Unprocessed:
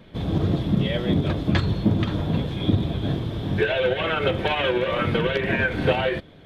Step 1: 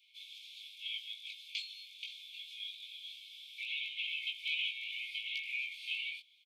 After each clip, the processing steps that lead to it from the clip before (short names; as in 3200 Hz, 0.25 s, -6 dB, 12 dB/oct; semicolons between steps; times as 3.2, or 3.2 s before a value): Chebyshev high-pass 2200 Hz, order 10; doubler 19 ms -3 dB; gain -7.5 dB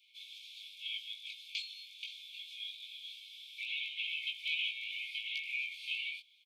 elliptic high-pass 2200 Hz, stop band 40 dB; gain +1 dB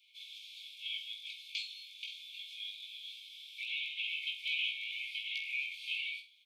flutter echo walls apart 8.1 m, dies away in 0.31 s